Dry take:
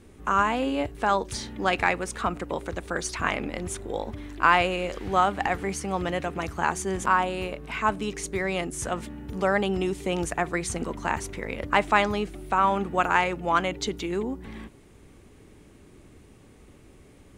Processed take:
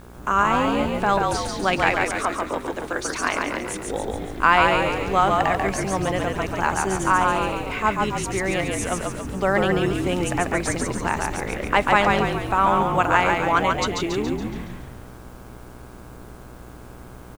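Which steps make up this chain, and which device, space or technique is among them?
0:01.91–0:03.87: Chebyshev high-pass filter 250 Hz, order 6
video cassette with head-switching buzz (hum with harmonics 60 Hz, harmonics 28, −47 dBFS −4 dB per octave; white noise bed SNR 35 dB)
echo with shifted repeats 140 ms, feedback 53%, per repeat −45 Hz, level −3 dB
level +2.5 dB

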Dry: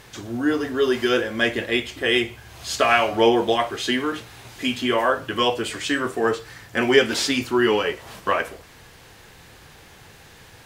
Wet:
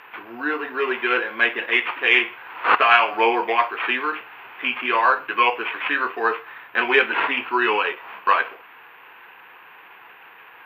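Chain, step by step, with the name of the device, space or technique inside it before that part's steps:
0:01.68–0:02.75: flat-topped bell 5,800 Hz +11 dB
toy sound module (linearly interpolated sample-rate reduction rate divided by 8×; switching amplifier with a slow clock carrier 12,000 Hz; loudspeaker in its box 590–4,400 Hz, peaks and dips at 600 Hz −9 dB, 1,000 Hz +6 dB, 1,500 Hz +4 dB, 2,600 Hz +8 dB, 3,900 Hz −9 dB)
level +3.5 dB

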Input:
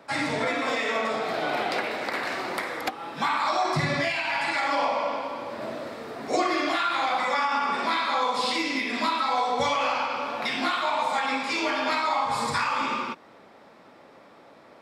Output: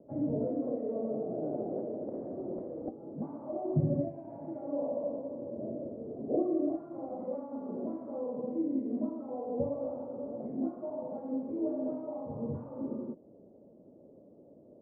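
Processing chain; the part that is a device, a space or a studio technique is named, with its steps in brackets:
under water (low-pass filter 410 Hz 24 dB per octave; parametric band 600 Hz +9 dB 0.42 octaves)

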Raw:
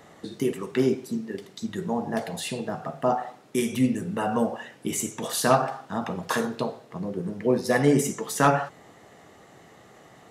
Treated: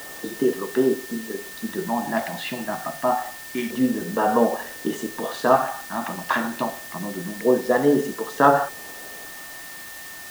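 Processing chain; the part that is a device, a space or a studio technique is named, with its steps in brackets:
shortwave radio (band-pass filter 270–2,600 Hz; amplitude tremolo 0.44 Hz, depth 38%; auto-filter notch square 0.27 Hz 450–2,300 Hz; steady tone 1,800 Hz −48 dBFS; white noise bed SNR 16 dB)
level +8 dB

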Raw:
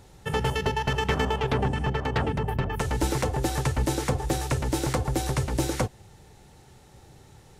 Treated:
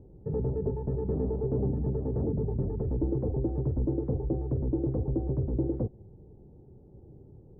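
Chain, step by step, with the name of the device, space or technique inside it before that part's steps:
overdriven synthesiser ladder filter (soft clipping −23 dBFS, distortion −13 dB; transistor ladder low-pass 500 Hz, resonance 30%)
level +7 dB

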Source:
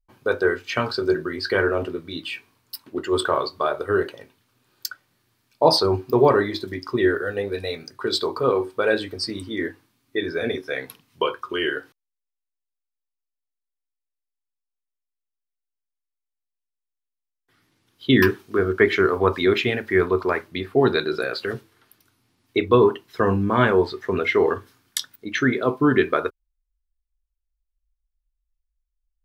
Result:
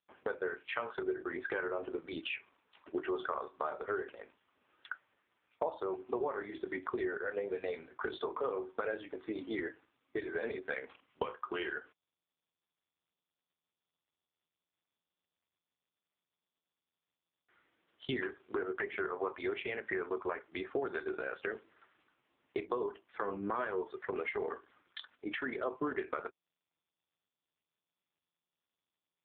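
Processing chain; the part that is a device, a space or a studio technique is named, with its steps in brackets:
voicemail (band-pass filter 400–2,900 Hz; downward compressor 12 to 1, threshold −32 dBFS, peak gain reduction 21.5 dB; level +1 dB; AMR narrowband 5.15 kbit/s 8,000 Hz)

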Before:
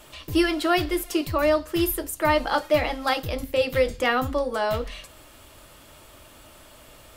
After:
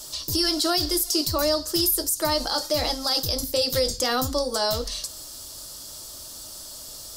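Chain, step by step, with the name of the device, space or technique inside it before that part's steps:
over-bright horn tweeter (high shelf with overshoot 3,500 Hz +13 dB, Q 3; brickwall limiter −13 dBFS, peak gain reduction 10 dB)

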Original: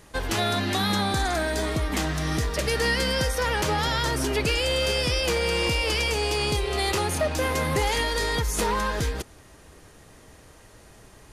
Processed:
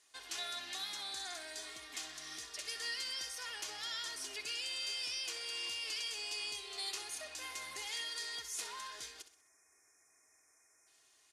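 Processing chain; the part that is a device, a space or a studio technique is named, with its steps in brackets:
time-frequency box erased 0:09.31–0:10.87, 2,500–5,100 Hz
piezo pickup straight into a mixer (low-pass filter 6,500 Hz 12 dB per octave; first difference)
comb filter 2.8 ms, depth 49%
repeating echo 64 ms, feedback 39%, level −12 dB
level −6.5 dB

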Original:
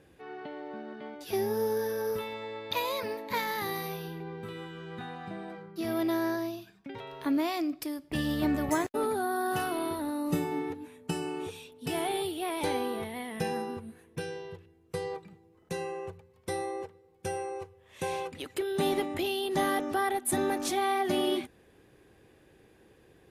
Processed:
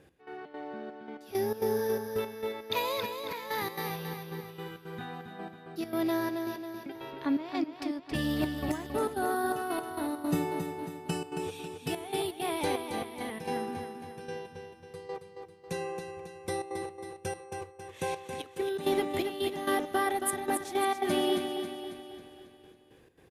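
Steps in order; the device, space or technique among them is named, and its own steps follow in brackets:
0:07.09–0:08.14: low-pass filter 5,000 Hz 12 dB per octave
trance gate with a delay (gate pattern "x..xx.xxxx.." 167 BPM −12 dB; repeating echo 273 ms, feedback 52%, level −7 dB)

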